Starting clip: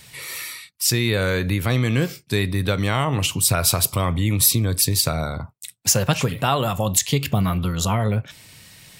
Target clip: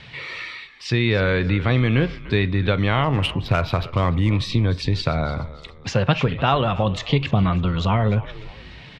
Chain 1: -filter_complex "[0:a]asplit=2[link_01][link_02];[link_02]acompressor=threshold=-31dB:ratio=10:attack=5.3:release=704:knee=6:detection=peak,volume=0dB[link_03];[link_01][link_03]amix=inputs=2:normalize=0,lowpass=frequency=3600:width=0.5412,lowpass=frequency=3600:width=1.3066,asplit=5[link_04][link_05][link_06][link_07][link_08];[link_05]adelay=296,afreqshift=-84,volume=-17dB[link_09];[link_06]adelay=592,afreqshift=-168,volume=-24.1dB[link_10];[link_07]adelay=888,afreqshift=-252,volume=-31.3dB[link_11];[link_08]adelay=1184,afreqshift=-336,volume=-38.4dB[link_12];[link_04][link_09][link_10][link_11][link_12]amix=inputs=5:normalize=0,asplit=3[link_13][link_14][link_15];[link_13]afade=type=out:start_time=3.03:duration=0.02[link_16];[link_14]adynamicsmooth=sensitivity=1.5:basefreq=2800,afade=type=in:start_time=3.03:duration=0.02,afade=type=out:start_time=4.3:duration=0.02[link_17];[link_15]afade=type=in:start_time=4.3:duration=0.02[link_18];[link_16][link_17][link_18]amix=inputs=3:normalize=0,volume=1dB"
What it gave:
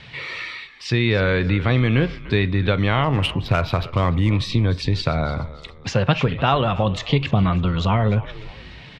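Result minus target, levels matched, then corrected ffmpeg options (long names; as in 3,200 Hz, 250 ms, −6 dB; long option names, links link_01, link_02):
downward compressor: peak gain reduction −6.5 dB
-filter_complex "[0:a]asplit=2[link_01][link_02];[link_02]acompressor=threshold=-38dB:ratio=10:attack=5.3:release=704:knee=6:detection=peak,volume=0dB[link_03];[link_01][link_03]amix=inputs=2:normalize=0,lowpass=frequency=3600:width=0.5412,lowpass=frequency=3600:width=1.3066,asplit=5[link_04][link_05][link_06][link_07][link_08];[link_05]adelay=296,afreqshift=-84,volume=-17dB[link_09];[link_06]adelay=592,afreqshift=-168,volume=-24.1dB[link_10];[link_07]adelay=888,afreqshift=-252,volume=-31.3dB[link_11];[link_08]adelay=1184,afreqshift=-336,volume=-38.4dB[link_12];[link_04][link_09][link_10][link_11][link_12]amix=inputs=5:normalize=0,asplit=3[link_13][link_14][link_15];[link_13]afade=type=out:start_time=3.03:duration=0.02[link_16];[link_14]adynamicsmooth=sensitivity=1.5:basefreq=2800,afade=type=in:start_time=3.03:duration=0.02,afade=type=out:start_time=4.3:duration=0.02[link_17];[link_15]afade=type=in:start_time=4.3:duration=0.02[link_18];[link_16][link_17][link_18]amix=inputs=3:normalize=0,volume=1dB"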